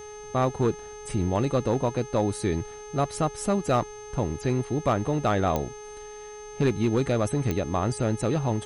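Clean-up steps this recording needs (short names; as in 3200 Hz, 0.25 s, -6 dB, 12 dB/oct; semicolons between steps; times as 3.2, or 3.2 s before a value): clip repair -15.5 dBFS; de-click; de-hum 420.8 Hz, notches 25; notch 6300 Hz, Q 30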